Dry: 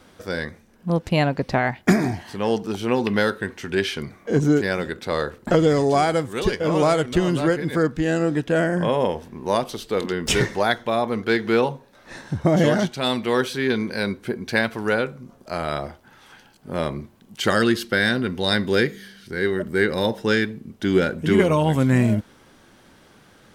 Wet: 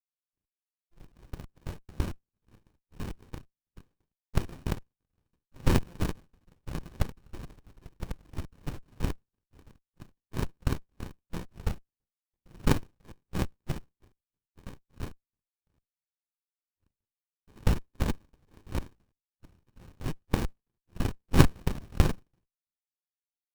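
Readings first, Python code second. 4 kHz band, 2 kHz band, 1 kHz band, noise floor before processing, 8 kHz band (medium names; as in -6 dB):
-17.0 dB, -19.5 dB, -16.5 dB, -53 dBFS, -11.0 dB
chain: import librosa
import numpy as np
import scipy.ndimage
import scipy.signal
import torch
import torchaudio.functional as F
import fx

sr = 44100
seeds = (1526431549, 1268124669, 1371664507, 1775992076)

p1 = fx.bit_reversed(x, sr, seeds[0], block=256)
p2 = fx.tilt_eq(p1, sr, slope=3.5)
p3 = fx.env_lowpass(p2, sr, base_hz=520.0, full_db=-5.0)
p4 = p3 + fx.echo_wet_highpass(p3, sr, ms=327, feedback_pct=34, hz=2800.0, wet_db=-20.0, dry=0)
p5 = fx.room_shoebox(p4, sr, seeds[1], volume_m3=910.0, walls='mixed', distance_m=4.4)
p6 = fx.chopper(p5, sr, hz=3.0, depth_pct=60, duty_pct=35)
p7 = fx.power_curve(p6, sr, exponent=3.0)
p8 = fx.peak_eq(p7, sr, hz=2800.0, db=-10.0, octaves=2.5)
p9 = fx.running_max(p8, sr, window=65)
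y = F.gain(torch.from_numpy(p9), -8.5).numpy()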